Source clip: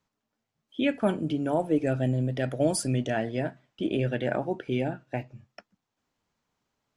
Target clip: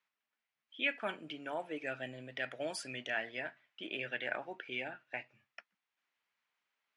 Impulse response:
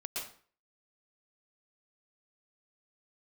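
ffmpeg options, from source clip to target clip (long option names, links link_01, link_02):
-af "bandpass=frequency=2200:width_type=q:width=1.6:csg=0,volume=2dB"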